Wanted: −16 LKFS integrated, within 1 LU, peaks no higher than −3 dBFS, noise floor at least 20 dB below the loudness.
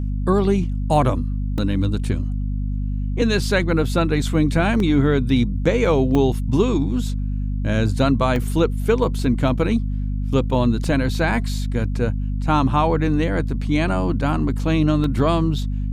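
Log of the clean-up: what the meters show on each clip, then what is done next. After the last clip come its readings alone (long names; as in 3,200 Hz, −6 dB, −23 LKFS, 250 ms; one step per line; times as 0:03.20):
number of dropouts 7; longest dropout 1.8 ms; mains hum 50 Hz; hum harmonics up to 250 Hz; level of the hum −21 dBFS; integrated loudness −20.5 LKFS; sample peak −4.0 dBFS; target loudness −16.0 LKFS
→ repair the gap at 0:01.58/0:04.80/0:06.15/0:08.36/0:09.19/0:10.84/0:15.04, 1.8 ms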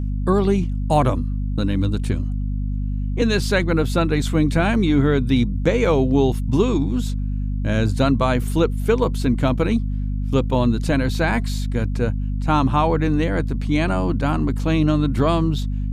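number of dropouts 0; mains hum 50 Hz; hum harmonics up to 250 Hz; level of the hum −21 dBFS
→ hum removal 50 Hz, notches 5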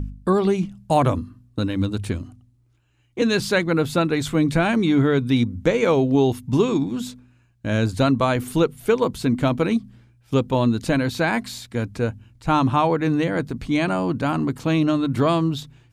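mains hum none found; integrated loudness −21.5 LKFS; sample peak −5.5 dBFS; target loudness −16.0 LKFS
→ level +5.5 dB
brickwall limiter −3 dBFS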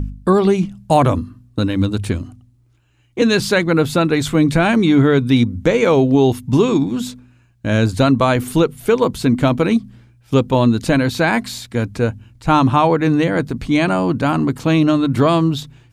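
integrated loudness −16.5 LKFS; sample peak −3.0 dBFS; background noise floor −54 dBFS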